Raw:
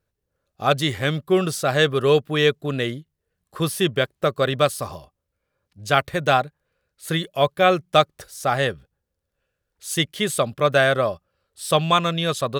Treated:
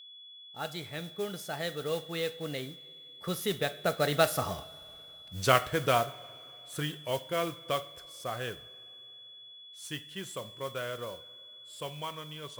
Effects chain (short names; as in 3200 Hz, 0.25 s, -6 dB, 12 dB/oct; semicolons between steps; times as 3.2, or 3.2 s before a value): Doppler pass-by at 4.87, 31 m/s, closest 4.8 m; in parallel at 0 dB: compressor, threshold -45 dBFS, peak gain reduction 19 dB; on the sum: modulation noise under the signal 16 dB; two-slope reverb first 0.47 s, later 3.1 s, from -17 dB, DRR 10.5 dB; whine 3400 Hz -54 dBFS; gain +6 dB